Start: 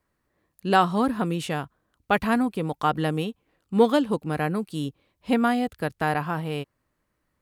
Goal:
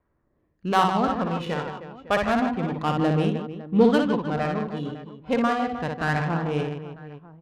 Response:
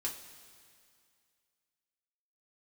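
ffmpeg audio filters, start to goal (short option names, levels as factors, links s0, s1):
-filter_complex "[0:a]aresample=16000,aresample=44100,aphaser=in_gain=1:out_gain=1:delay=2.1:decay=0.45:speed=0.3:type=sinusoidal,aecho=1:1:60|156|309.6|555.4|948.6:0.631|0.398|0.251|0.158|0.1,asplit=2[s0][s1];[1:a]atrim=start_sample=2205,adelay=55[s2];[s1][s2]afir=irnorm=-1:irlink=0,volume=0.0891[s3];[s0][s3]amix=inputs=2:normalize=0,adynamicsmooth=sensitivity=2.5:basefreq=1800,volume=0.841"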